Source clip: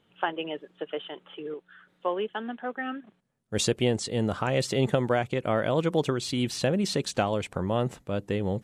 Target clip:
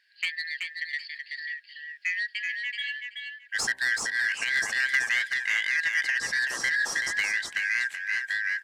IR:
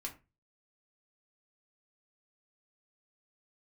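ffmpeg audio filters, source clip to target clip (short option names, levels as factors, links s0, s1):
-af "afftfilt=real='real(if(lt(b,272),68*(eq(floor(b/68),0)*3+eq(floor(b/68),1)*0+eq(floor(b/68),2)*1+eq(floor(b/68),3)*2)+mod(b,68),b),0)':imag='imag(if(lt(b,272),68*(eq(floor(b/68),0)*3+eq(floor(b/68),1)*0+eq(floor(b/68),2)*1+eq(floor(b/68),3)*2)+mod(b,68),b),0)':win_size=2048:overlap=0.75,lowshelf=f=260:g=-10.5,bandreject=f=65.13:t=h:w=4,bandreject=f=130.26:t=h:w=4,bandreject=f=195.39:t=h:w=4,bandreject=f=260.52:t=h:w=4,bandreject=f=325.65:t=h:w=4,bandreject=f=390.78:t=h:w=4,bandreject=f=455.91:t=h:w=4,bandreject=f=521.04:t=h:w=4,bandreject=f=586.17:t=h:w=4,bandreject=f=651.3:t=h:w=4,bandreject=f=716.43:t=h:w=4,bandreject=f=781.56:t=h:w=4,bandreject=f=846.69:t=h:w=4,bandreject=f=911.82:t=h:w=4,bandreject=f=976.95:t=h:w=4,bandreject=f=1042.08:t=h:w=4,bandreject=f=1107.21:t=h:w=4,asoftclip=type=tanh:threshold=0.119,aecho=1:1:379|758|1137:0.562|0.09|0.0144"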